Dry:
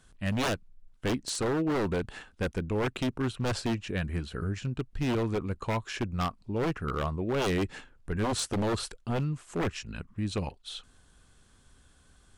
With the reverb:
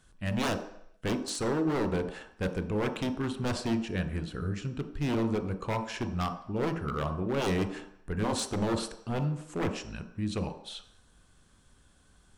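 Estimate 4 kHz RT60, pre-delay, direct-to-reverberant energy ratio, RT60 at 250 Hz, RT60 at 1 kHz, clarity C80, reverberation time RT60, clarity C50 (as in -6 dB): 0.70 s, 21 ms, 7.0 dB, 0.55 s, 0.75 s, 13.0 dB, 0.70 s, 10.5 dB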